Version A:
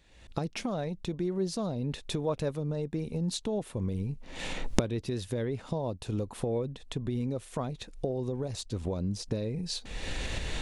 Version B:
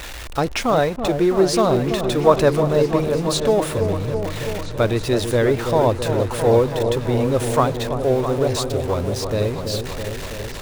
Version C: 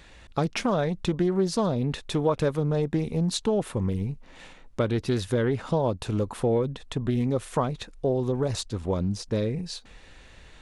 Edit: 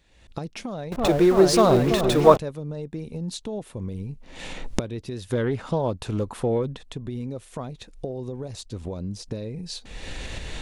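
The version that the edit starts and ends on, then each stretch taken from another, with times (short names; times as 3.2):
A
0.92–2.37 from B
5.3–6.83 from C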